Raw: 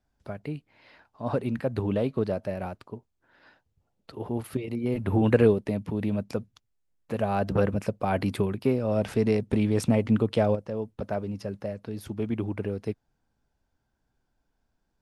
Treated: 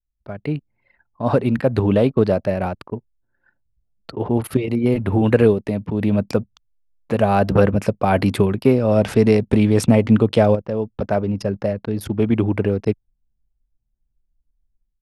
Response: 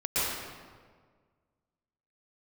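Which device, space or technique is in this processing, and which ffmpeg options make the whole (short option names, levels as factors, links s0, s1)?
voice memo with heavy noise removal: -af "anlmdn=0.0251,dynaudnorm=f=270:g=3:m=3.98"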